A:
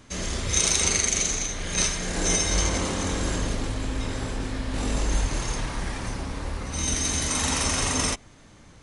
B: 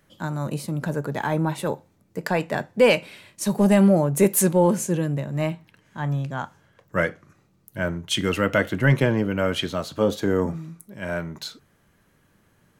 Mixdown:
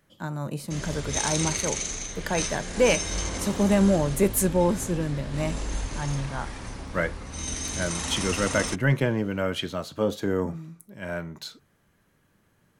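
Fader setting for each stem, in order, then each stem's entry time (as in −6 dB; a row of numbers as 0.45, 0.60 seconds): −6.0, −4.0 decibels; 0.60, 0.00 seconds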